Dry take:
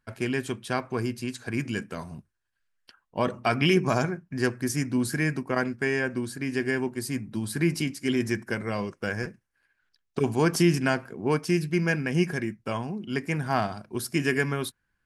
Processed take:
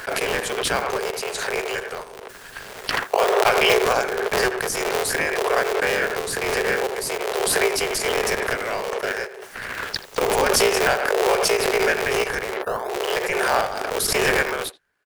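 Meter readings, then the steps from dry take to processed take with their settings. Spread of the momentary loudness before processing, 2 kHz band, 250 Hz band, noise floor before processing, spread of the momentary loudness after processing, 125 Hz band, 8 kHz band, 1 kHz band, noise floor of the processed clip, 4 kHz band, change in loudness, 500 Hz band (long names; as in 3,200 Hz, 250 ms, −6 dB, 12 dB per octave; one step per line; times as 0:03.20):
9 LU, +8.5 dB, −6.5 dB, −78 dBFS, 11 LU, −10.0 dB, +12.0 dB, +10.0 dB, −41 dBFS, +11.0 dB, +6.0 dB, +8.5 dB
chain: sub-harmonics by changed cycles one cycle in 3, inverted
Chebyshev high-pass filter 380 Hz, order 8
time-frequency box erased 0:12.54–0:12.89, 1,800–9,100 Hz
in parallel at −11 dB: sample-and-hold swept by an LFO 37×, swing 100% 0.51 Hz
on the sum: far-end echo of a speakerphone 80 ms, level −17 dB
background raised ahead of every attack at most 21 dB per second
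level +5.5 dB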